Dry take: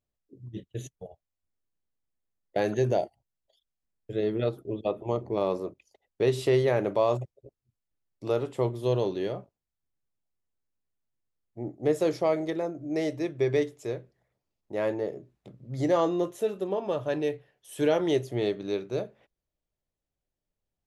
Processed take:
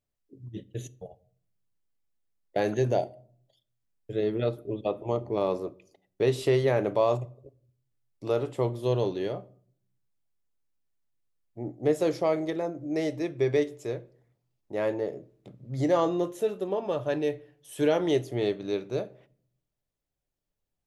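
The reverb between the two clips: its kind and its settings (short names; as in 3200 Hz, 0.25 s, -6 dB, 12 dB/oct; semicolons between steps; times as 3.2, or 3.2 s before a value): shoebox room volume 790 m³, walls furnished, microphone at 0.31 m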